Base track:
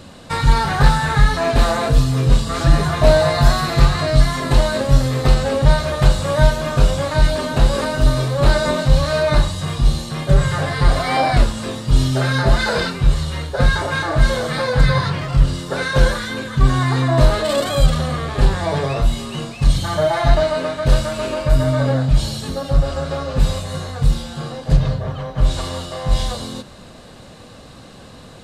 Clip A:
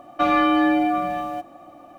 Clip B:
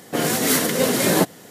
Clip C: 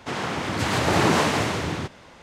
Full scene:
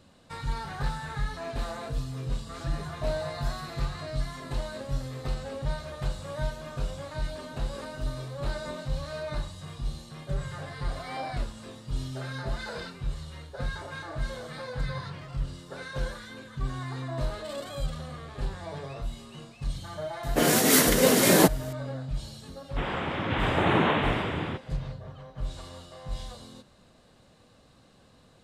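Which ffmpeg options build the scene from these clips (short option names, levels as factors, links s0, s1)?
-filter_complex "[0:a]volume=0.126[s0];[3:a]aresample=8000,aresample=44100[s1];[2:a]atrim=end=1.5,asetpts=PTS-STARTPTS,volume=0.891,afade=t=in:d=0.004:c=hsin,afade=t=out:st=1.496:d=0.004:c=hsin,adelay=20230[s2];[s1]atrim=end=2.22,asetpts=PTS-STARTPTS,volume=0.668,afade=t=in:d=0.004:c=hsin,afade=t=out:st=2.216:d=0.004:c=hsin,adelay=22700[s3];[s0][s2][s3]amix=inputs=3:normalize=0"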